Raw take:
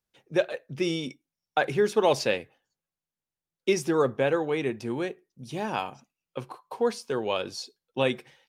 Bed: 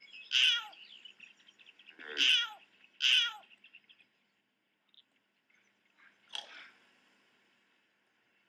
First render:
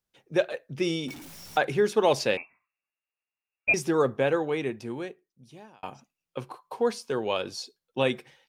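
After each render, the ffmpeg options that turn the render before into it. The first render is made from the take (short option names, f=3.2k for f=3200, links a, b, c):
-filter_complex "[0:a]asettb=1/sr,asplit=3[a][b][c];[a]atrim=end=1.084[d];[b]atrim=start=1.08:end=1.58,asetpts=PTS-STARTPTS,afade=t=in:d=0.004:c=qsin,afade=t=out:st=0.496:d=0.004:c=qsin,aeval=exprs='val(0)+0.5*0.0133*sgn(val(0))':c=same[e];[c]atrim=start=1.576[f];[d][e]acrossfade=d=0.004:c1=hsin:c2=qsin[g];[g][f]acrossfade=d=0.004:c1=qsin:c2=hsin,asettb=1/sr,asplit=3[h][i][j];[h]atrim=end=2.374[k];[i]atrim=start=2.37:end=3.74,asetpts=PTS-STARTPTS,afade=t=in:d=0.004:c=qsin,afade=t=out:st=1.366:d=0.004:c=qsin,lowpass=f=2.4k:t=q:w=0.5098,lowpass=f=2.4k:t=q:w=0.6013,lowpass=f=2.4k:t=q:w=0.9,lowpass=f=2.4k:t=q:w=2.563,afreqshift=-2800[l];[j]atrim=start=3.736[m];[k][l]acrossfade=d=0.004:c1=hsin:c2=qsin[n];[n][m]acrossfade=d=0.004:c1=qsin:c2=hsin,asplit=2[o][p];[o]atrim=end=5.83,asetpts=PTS-STARTPTS,afade=t=out:st=4.4:d=1.43[q];[p]atrim=start=5.83,asetpts=PTS-STARTPTS,afade=t=in:d=0.004:c=hsin[r];[q][r]concat=n=2:v=0:a=1"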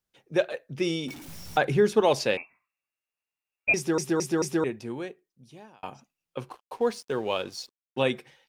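-filter_complex "[0:a]asettb=1/sr,asplit=3[a][b][c];[a]atrim=end=1.284[d];[b]atrim=start=1.28:end=2.01,asetpts=PTS-STARTPTS,afade=t=in:d=0.004:c=qsin,afade=t=out:st=0.726:d=0.004:c=qsin,lowshelf=f=180:g=11.5[e];[c]atrim=start=2.006[f];[d][e]acrossfade=d=0.004:c1=hsin:c2=qsin[g];[g][f]acrossfade=d=0.004:c1=qsin:c2=hsin,asettb=1/sr,asplit=3[h][i][j];[h]atrim=end=6.494[k];[i]atrim=start=6.49:end=8.02,asetpts=PTS-STARTPTS,afade=t=in:d=0.004:c=qsin,afade=t=out:st=1.526:d=0.004:c=qsin,aeval=exprs='sgn(val(0))*max(abs(val(0))-0.00266,0)':c=same[l];[j]atrim=start=8.016[m];[k][l]acrossfade=d=0.004:c1=hsin:c2=qsin[n];[n][m]acrossfade=d=0.004:c1=qsin:c2=hsin,asplit=5[o][p][q][r][s];[o]atrim=end=3.982[t];[p]atrim=start=3.758:end=3.982[u];[q]atrim=start=3.758:end=3.982[v];[r]atrim=start=3.758:end=3.982[w];[s]atrim=start=4.638[x];[t][u]acrossfade=d=0.004:c1=hsin:c2=hsin[y];[y][v]acrossfade=d=0.004:c1=hsin:c2=hsin[z];[z][w]acrossfade=d=0.004:c1=hsin:c2=hsin[aa];[aa][x]acrossfade=d=0.004:c1=hsin:c2=hsin"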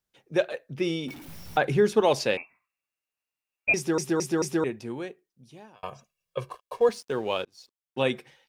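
-filter_complex "[0:a]asettb=1/sr,asplit=3[a][b][c];[a]atrim=end=0.744[d];[b]atrim=start=0.74:end=1.65,asetpts=PTS-STARTPTS,afade=t=in:d=0.004:c=qsin,afade=t=out:st=0.906:d=0.004:c=qsin,equalizer=f=7.1k:t=o:w=1.2:g=-6.5[e];[c]atrim=start=1.646[f];[d][e]acrossfade=d=0.004:c1=hsin:c2=qsin[g];[g][f]acrossfade=d=0.004:c1=qsin:c2=hsin,asettb=1/sr,asplit=3[h][i][j];[h]atrim=end=5.754[k];[i]atrim=start=5.75:end=6.89,asetpts=PTS-STARTPTS,afade=t=in:d=0.004:c=qsin,afade=t=out:st=1.136:d=0.004:c=qsin,aecho=1:1:1.8:0.87,atrim=end_sample=50274[l];[j]atrim=start=6.886[m];[k][l]acrossfade=d=0.004:c1=hsin:c2=qsin[n];[n][m]acrossfade=d=0.004:c1=qsin:c2=hsin,asplit=2[o][p];[o]atrim=end=7.45,asetpts=PTS-STARTPTS,afade=t=out:st=7.446:d=0.004:c=hsin[q];[p]atrim=start=7.45,asetpts=PTS-STARTPTS,afade=t=in:d=0.61[r];[q][r]concat=n=2:v=0:a=1"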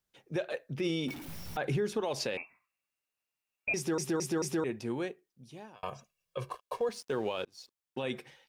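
-af "acompressor=threshold=-25dB:ratio=6,alimiter=limit=-23.5dB:level=0:latency=1:release=38"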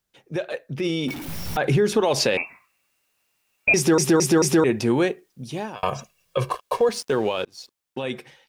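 -filter_complex "[0:a]dynaudnorm=f=250:g=13:m=12dB,asplit=2[a][b];[b]alimiter=limit=-23.5dB:level=0:latency=1:release=121,volume=0dB[c];[a][c]amix=inputs=2:normalize=0"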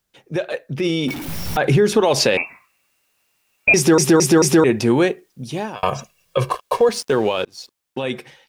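-af "volume=4.5dB"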